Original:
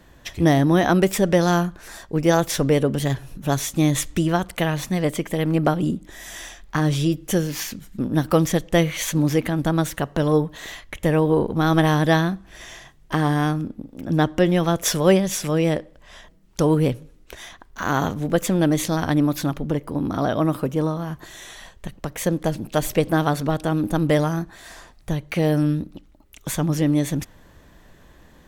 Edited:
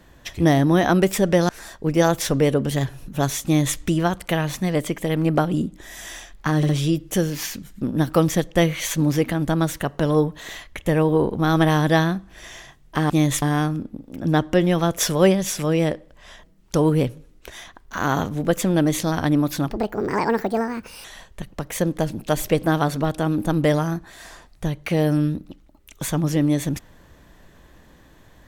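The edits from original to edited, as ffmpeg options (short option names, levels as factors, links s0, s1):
-filter_complex "[0:a]asplit=8[s0][s1][s2][s3][s4][s5][s6][s7];[s0]atrim=end=1.492[s8];[s1]atrim=start=1.778:end=6.922[s9];[s2]atrim=start=6.858:end=6.922[s10];[s3]atrim=start=6.858:end=13.272[s11];[s4]atrim=start=3.738:end=4.062[s12];[s5]atrim=start=13.268:end=19.554[s13];[s6]atrim=start=19.55:end=21.5,asetpts=PTS-STARTPTS,asetrate=63945,aresample=44100[s14];[s7]atrim=start=21.496[s15];[s8][s9]acrossfade=d=0.004:c1=hsin:c2=hsin[s16];[s16][s10]acrossfade=d=0.004:c1=hsin:c2=hsin[s17];[s17][s11]acrossfade=d=0.004:c1=hsin:c2=hsin[s18];[s18][s12]acrossfade=d=0.004:c1=hsin:c2=hsin[s19];[s19][s13]acrossfade=d=0.004:c1=hsin:c2=hsin[s20];[s20][s14]acrossfade=d=0.004:c1=hsin:c2=hsin[s21];[s21][s15]acrossfade=d=0.004:c1=hsin:c2=hsin"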